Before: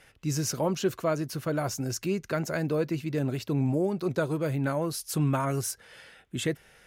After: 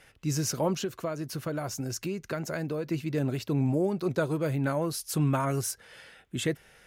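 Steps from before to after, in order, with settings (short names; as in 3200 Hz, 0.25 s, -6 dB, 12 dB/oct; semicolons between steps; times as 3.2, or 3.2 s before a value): 0.78–2.88 compressor, threshold -29 dBFS, peak gain reduction 8.5 dB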